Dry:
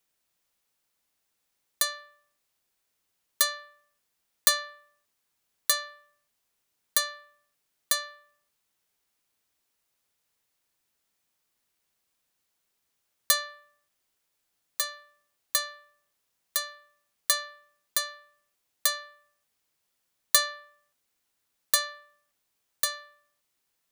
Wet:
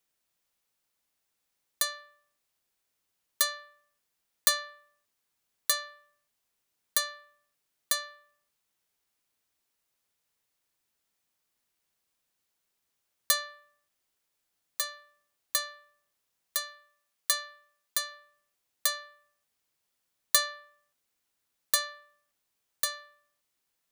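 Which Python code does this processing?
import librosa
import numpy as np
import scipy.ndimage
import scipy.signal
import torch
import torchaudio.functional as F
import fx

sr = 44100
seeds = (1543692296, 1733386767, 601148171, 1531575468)

y = fx.low_shelf(x, sr, hz=470.0, db=-6.5, at=(16.59, 18.12))
y = y * 10.0 ** (-2.5 / 20.0)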